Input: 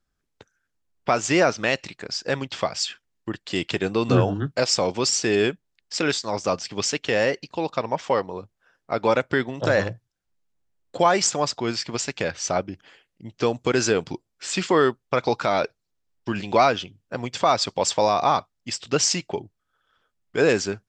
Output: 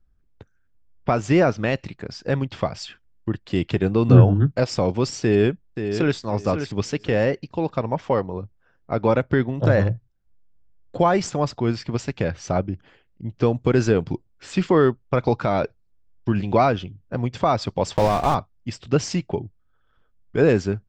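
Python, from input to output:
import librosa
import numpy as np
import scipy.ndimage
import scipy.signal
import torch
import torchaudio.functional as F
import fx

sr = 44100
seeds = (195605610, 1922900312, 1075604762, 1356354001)

y = fx.echo_throw(x, sr, start_s=5.23, length_s=0.95, ms=530, feedback_pct=20, wet_db=-8.0)
y = fx.block_float(y, sr, bits=3, at=(17.95, 18.35))
y = fx.riaa(y, sr, side='playback')
y = y * 10.0 ** (-1.5 / 20.0)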